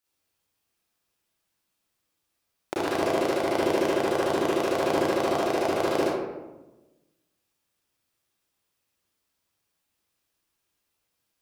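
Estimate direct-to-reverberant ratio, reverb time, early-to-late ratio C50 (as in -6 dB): -8.0 dB, 1.1 s, -3.0 dB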